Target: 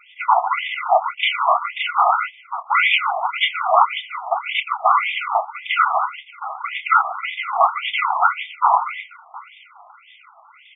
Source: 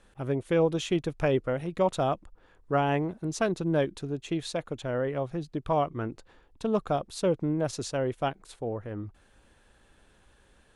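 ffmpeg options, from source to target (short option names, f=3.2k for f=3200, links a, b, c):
-filter_complex "[0:a]asplit=2[a][b];[b]adelay=140,highpass=300,lowpass=3.4k,asoftclip=type=hard:threshold=-24dB,volume=-10dB[c];[a][c]amix=inputs=2:normalize=0,aresample=16000,aeval=exprs='abs(val(0))':c=same,aresample=44100,afftfilt=real='hypot(re,im)*cos(2*PI*random(0))':imag='hypot(re,im)*sin(2*PI*random(1))':win_size=512:overlap=0.75,asuperstop=centerf=1700:order=20:qfactor=3.4,asplit=2[d][e];[e]adelay=28,volume=-11.5dB[f];[d][f]amix=inputs=2:normalize=0,asplit=2[g][h];[h]aecho=0:1:718:0.1[i];[g][i]amix=inputs=2:normalize=0,alimiter=level_in=28dB:limit=-1dB:release=50:level=0:latency=1,afftfilt=real='re*between(b*sr/1024,890*pow(2600/890,0.5+0.5*sin(2*PI*1.8*pts/sr))/1.41,890*pow(2600/890,0.5+0.5*sin(2*PI*1.8*pts/sr))*1.41)':imag='im*between(b*sr/1024,890*pow(2600/890,0.5+0.5*sin(2*PI*1.8*pts/sr))/1.41,890*pow(2600/890,0.5+0.5*sin(2*PI*1.8*pts/sr))*1.41)':win_size=1024:overlap=0.75,volume=4.5dB"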